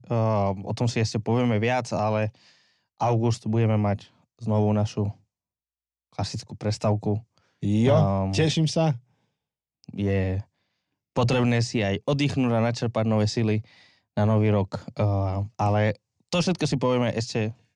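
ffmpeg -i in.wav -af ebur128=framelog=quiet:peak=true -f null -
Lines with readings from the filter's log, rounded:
Integrated loudness:
  I:         -25.0 LUFS
  Threshold: -35.4 LUFS
Loudness range:
  LRA:         3.0 LU
  Threshold: -45.8 LUFS
  LRA low:   -27.7 LUFS
  LRA high:  -24.7 LUFS
True peak:
  Peak:      -11.6 dBFS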